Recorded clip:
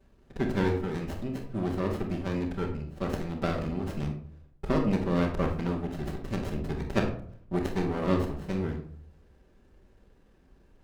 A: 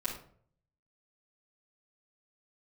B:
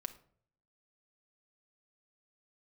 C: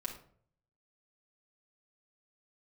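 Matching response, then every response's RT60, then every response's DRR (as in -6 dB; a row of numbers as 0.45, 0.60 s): A; 0.55, 0.55, 0.55 s; -8.0, 7.5, -1.5 dB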